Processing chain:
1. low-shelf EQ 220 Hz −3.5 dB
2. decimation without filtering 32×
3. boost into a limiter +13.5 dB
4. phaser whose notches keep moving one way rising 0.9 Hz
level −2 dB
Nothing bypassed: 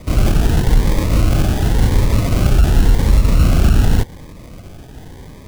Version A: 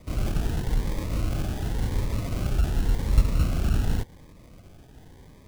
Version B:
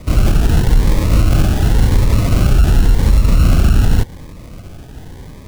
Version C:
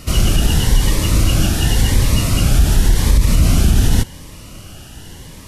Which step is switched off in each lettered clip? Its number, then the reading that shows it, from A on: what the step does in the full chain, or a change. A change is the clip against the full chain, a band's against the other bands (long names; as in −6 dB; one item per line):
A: 3, change in crest factor +8.0 dB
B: 1, change in integrated loudness +1.5 LU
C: 2, distortion level −8 dB